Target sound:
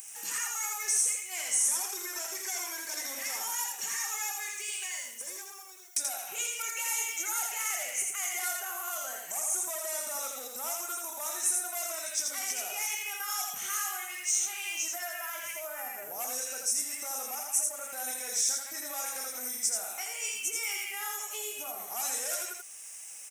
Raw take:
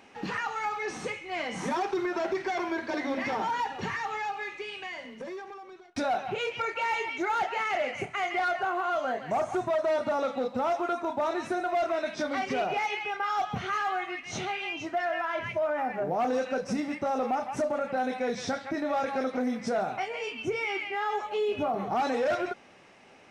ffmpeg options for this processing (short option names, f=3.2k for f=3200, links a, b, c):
-filter_complex "[0:a]aexciter=amount=7.6:drive=9.3:freq=6.4k,alimiter=limit=-24dB:level=0:latency=1:release=402,aderivative,asplit=2[a][b];[b]aecho=0:1:83:0.668[c];[a][c]amix=inputs=2:normalize=0,volume=7.5dB"